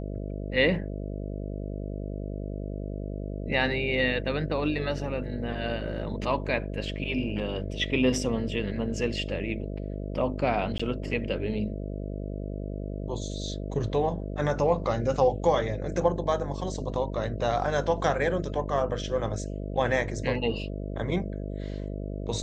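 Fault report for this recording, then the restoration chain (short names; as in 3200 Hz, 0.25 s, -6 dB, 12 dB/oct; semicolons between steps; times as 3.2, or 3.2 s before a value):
buzz 50 Hz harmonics 13 -34 dBFS
10.78–10.79 gap 15 ms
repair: de-hum 50 Hz, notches 13; interpolate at 10.78, 15 ms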